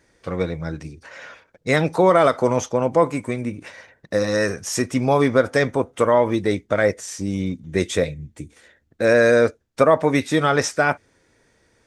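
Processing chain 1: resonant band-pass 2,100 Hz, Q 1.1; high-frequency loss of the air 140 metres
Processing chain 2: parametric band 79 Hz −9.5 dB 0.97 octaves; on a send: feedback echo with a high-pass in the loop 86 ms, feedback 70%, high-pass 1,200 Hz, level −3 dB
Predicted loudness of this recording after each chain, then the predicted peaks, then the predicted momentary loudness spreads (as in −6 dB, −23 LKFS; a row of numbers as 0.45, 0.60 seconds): −29.0, −19.5 LKFS; −11.0, −2.0 dBFS; 18, 17 LU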